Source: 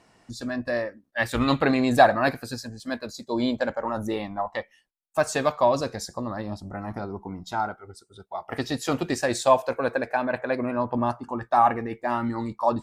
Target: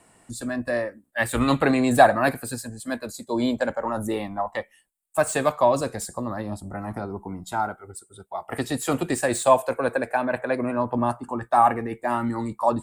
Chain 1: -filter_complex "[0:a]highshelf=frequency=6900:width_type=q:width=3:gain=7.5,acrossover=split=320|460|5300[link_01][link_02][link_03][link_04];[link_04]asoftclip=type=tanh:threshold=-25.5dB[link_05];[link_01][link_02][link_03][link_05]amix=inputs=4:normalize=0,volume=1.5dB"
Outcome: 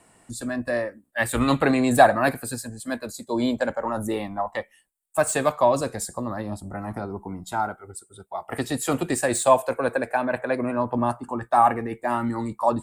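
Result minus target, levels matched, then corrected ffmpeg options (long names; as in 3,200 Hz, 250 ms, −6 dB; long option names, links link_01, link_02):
soft clipping: distortion −5 dB
-filter_complex "[0:a]highshelf=frequency=6900:width_type=q:width=3:gain=7.5,acrossover=split=320|460|5300[link_01][link_02][link_03][link_04];[link_04]asoftclip=type=tanh:threshold=-31.5dB[link_05];[link_01][link_02][link_03][link_05]amix=inputs=4:normalize=0,volume=1.5dB"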